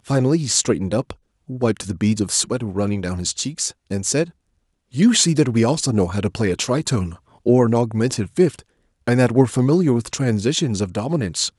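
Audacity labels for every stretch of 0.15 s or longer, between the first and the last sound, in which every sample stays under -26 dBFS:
1.110000	1.500000	silence
3.700000	3.910000	silence
4.240000	4.950000	silence
7.130000	7.460000	silence
8.590000	9.080000	silence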